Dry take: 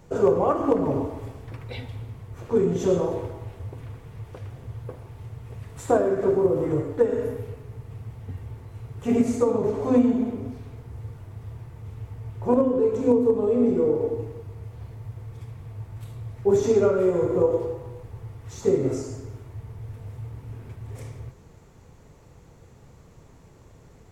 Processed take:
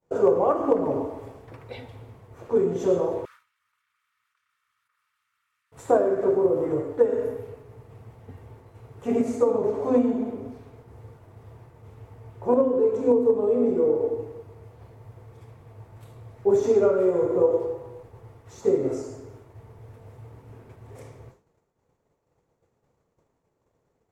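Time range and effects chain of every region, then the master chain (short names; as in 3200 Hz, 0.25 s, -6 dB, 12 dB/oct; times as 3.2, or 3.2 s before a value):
3.25–5.72 minimum comb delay 2.2 ms + elliptic high-pass 1200 Hz + fast leveller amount 100%
whole clip: EQ curve 180 Hz 0 dB, 550 Hz +4 dB, 3100 Hz -4 dB; expander -38 dBFS; low shelf 150 Hz -11.5 dB; gain -1.5 dB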